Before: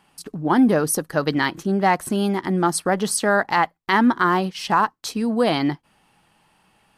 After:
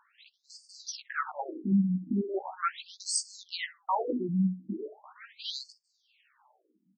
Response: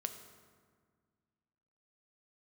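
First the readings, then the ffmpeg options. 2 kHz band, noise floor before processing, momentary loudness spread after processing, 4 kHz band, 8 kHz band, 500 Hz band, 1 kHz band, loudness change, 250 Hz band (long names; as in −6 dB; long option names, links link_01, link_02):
−17.5 dB, −62 dBFS, 19 LU, −9.0 dB, −9.5 dB, −16.0 dB, −15.5 dB, −12.0 dB, −11.0 dB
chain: -filter_complex "[0:a]aeval=exprs='if(lt(val(0),0),0.447*val(0),val(0))':channel_layout=same,tremolo=f=20:d=0.46,asplit=2[link_01][link_02];[link_02]aeval=exprs='0.0596*(abs(mod(val(0)/0.0596+3,4)-2)-1)':channel_layout=same,volume=-11dB[link_03];[link_01][link_03]amix=inputs=2:normalize=0,asplit=2[link_04][link_05];[link_05]adelay=16,volume=-3dB[link_06];[link_04][link_06]amix=inputs=2:normalize=0,asplit=2[link_07][link_08];[link_08]adelay=65,lowpass=frequency=1000:poles=1,volume=-11dB,asplit=2[link_09][link_10];[link_10]adelay=65,lowpass=frequency=1000:poles=1,volume=0.24,asplit=2[link_11][link_12];[link_12]adelay=65,lowpass=frequency=1000:poles=1,volume=0.24[link_13];[link_07][link_09][link_11][link_13]amix=inputs=4:normalize=0,afftfilt=real='re*between(b*sr/1024,200*pow(6300/200,0.5+0.5*sin(2*PI*0.39*pts/sr))/1.41,200*pow(6300/200,0.5+0.5*sin(2*PI*0.39*pts/sr))*1.41)':imag='im*between(b*sr/1024,200*pow(6300/200,0.5+0.5*sin(2*PI*0.39*pts/sr))/1.41,200*pow(6300/200,0.5+0.5*sin(2*PI*0.39*pts/sr))*1.41)':win_size=1024:overlap=0.75"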